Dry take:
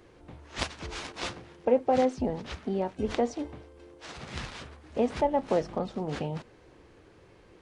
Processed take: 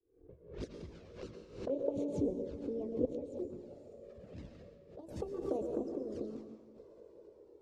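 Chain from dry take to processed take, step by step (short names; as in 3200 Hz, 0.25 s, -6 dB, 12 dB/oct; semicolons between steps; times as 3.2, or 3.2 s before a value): gliding pitch shift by +7.5 st starting unshifted; low-pass opened by the level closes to 1700 Hz, open at -25.5 dBFS; expander -43 dBFS; EQ curve 160 Hz 0 dB, 460 Hz +10 dB, 780 Hz -14 dB, 3200 Hz -14 dB, 5400 Hz -8 dB; diffused feedback echo 0.548 s, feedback 53%, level -13 dB; dynamic EQ 2200 Hz, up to -5 dB, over -45 dBFS, Q 0.74; chopper 0.59 Hz, depth 65%, duty 80%; harmonic-percussive split harmonic -11 dB; envelope flanger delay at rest 2.6 ms, full sweep at -29 dBFS; reverb RT60 1.0 s, pre-delay 0.106 s, DRR 5.5 dB; backwards sustainer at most 110 dB/s; gain -4 dB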